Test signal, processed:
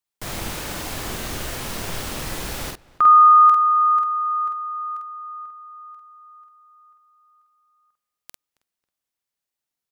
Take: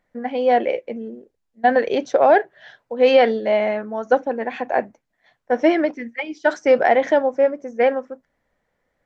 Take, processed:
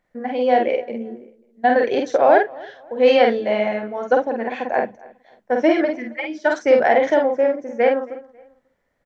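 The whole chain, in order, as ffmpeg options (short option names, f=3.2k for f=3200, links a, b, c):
-filter_complex "[0:a]asplit=2[a][b];[b]adelay=48,volume=-3.5dB[c];[a][c]amix=inputs=2:normalize=0,asplit=2[d][e];[e]adelay=272,lowpass=f=2.9k:p=1,volume=-22.5dB,asplit=2[f][g];[g]adelay=272,lowpass=f=2.9k:p=1,volume=0.36[h];[f][h]amix=inputs=2:normalize=0[i];[d][i]amix=inputs=2:normalize=0,volume=-1dB"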